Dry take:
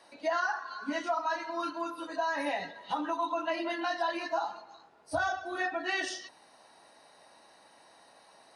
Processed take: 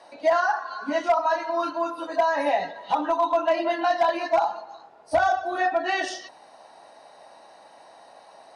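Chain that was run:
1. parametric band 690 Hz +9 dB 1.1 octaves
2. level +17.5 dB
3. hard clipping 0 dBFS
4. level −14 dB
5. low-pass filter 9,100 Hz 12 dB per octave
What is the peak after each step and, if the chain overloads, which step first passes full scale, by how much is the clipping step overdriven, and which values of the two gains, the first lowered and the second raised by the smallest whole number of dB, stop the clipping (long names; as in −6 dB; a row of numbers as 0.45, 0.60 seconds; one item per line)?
−12.5, +5.0, 0.0, −14.0, −14.0 dBFS
step 2, 5.0 dB
step 2 +12.5 dB, step 4 −9 dB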